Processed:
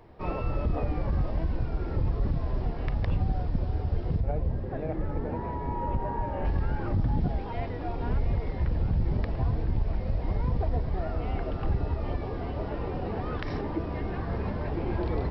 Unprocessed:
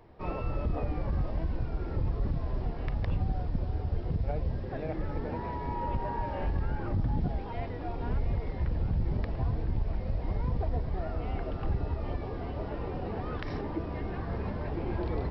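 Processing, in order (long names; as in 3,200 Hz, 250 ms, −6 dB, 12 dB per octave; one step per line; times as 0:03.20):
0:04.20–0:06.45: high-shelf EQ 2,400 Hz −12 dB
level +3 dB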